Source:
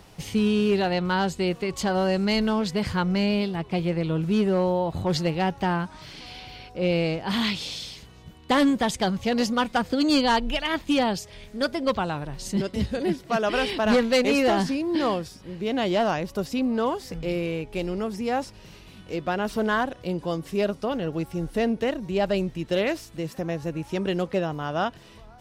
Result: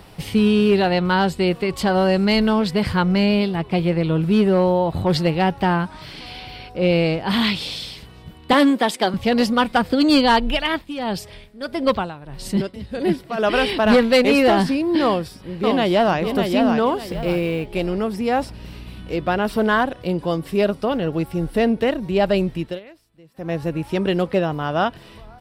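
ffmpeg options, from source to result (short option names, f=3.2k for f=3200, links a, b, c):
-filter_complex "[0:a]asettb=1/sr,asplit=3[a][b][c];[a]atrim=end=8.534[d];[b]atrim=start=8.53:end=9.14,asetpts=PTS-STARTPTS,afade=t=in:d=0.004:c=qsin,afade=t=out:st=0.606:d=0.004:c=qsin,highpass=f=240:w=0.5412,highpass=f=240:w=1.3066[e];[c]atrim=start=9.136[f];[d][e]acrossfade=d=0.004:c1=hsin:c2=qsin[g];[g][f]acrossfade=d=0.004:c1=qsin:c2=hsin,asplit=3[h][i][j];[h]afade=t=out:st=10.55:d=0.02[k];[i]tremolo=f=1.6:d=0.8,afade=t=in:st=10.55:d=0.02,afade=t=out:st=13.37:d=0.02[l];[j]afade=t=in:st=13.37:d=0.02[m];[k][l][m]amix=inputs=3:normalize=0,asplit=2[n][o];[o]afade=t=in:st=15.03:d=0.01,afade=t=out:st=16.19:d=0.01,aecho=0:1:600|1200|1800|2400:0.595662|0.178699|0.0536096|0.0160829[p];[n][p]amix=inputs=2:normalize=0,asettb=1/sr,asplit=3[q][r][s];[q]atrim=end=17.084[t];[r]atrim=start=17.08:end=17.66,asetpts=PTS-STARTPTS,afade=t=in:d=0.004:c=qsin,afade=t=out:st=0.576:d=0.004:c=qsin,acrusher=bits=8:mode=log:mix=0:aa=0.000001[u];[s]atrim=start=17.656[v];[t][u]acrossfade=d=0.004:c1=hsin:c2=qsin[w];[w][v]acrossfade=d=0.004:c1=qsin:c2=hsin,asettb=1/sr,asplit=3[x][y][z];[x]atrim=end=18.384[aa];[y]atrim=start=18.38:end=19.39,asetpts=PTS-STARTPTS,afade=t=in:d=0.004:c=qsin,afade=t=out:st=1.006:d=0.004:c=qsin,aeval=exprs='val(0)+0.00794*(sin(2*PI*60*n/s)+sin(2*PI*2*60*n/s)/2+sin(2*PI*3*60*n/s)/3+sin(2*PI*4*60*n/s)/4+sin(2*PI*5*60*n/s)/5)':c=same[ab];[z]atrim=start=19.386[ac];[aa][ab]acrossfade=d=0.004:c1=hsin:c2=qsin[ad];[ad][ac]acrossfade=d=0.004:c1=qsin:c2=hsin,asplit=3[ae][af][ag];[ae]atrim=end=22.8,asetpts=PTS-STARTPTS,afade=t=out:st=22.59:d=0.21:silence=0.0630957[ah];[af]atrim=start=22.8:end=23.34,asetpts=PTS-STARTPTS,volume=-24dB[ai];[ag]atrim=start=23.34,asetpts=PTS-STARTPTS,afade=t=in:d=0.21:silence=0.0630957[aj];[ah][ai][aj]concat=n=3:v=0:a=1,equalizer=f=6.5k:w=3.2:g=-11,volume=6dB"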